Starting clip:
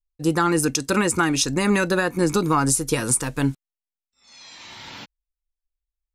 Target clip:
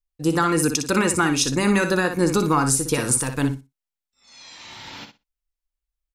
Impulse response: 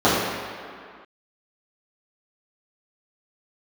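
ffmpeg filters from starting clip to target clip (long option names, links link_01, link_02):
-af "aecho=1:1:60|120|180:0.398|0.0637|0.0102"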